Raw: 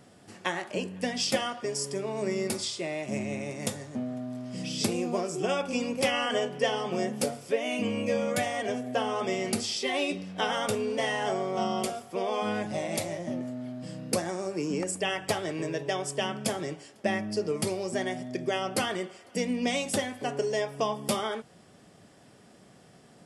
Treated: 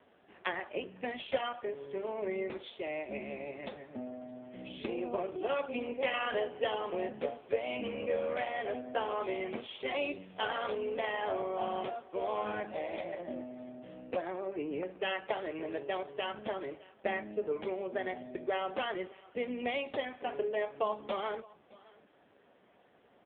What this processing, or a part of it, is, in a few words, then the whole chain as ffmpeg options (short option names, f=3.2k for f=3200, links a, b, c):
satellite phone: -af "highpass=340,lowpass=3.4k,aecho=1:1:615:0.0708,volume=-2dB" -ar 8000 -c:a libopencore_amrnb -b:a 5900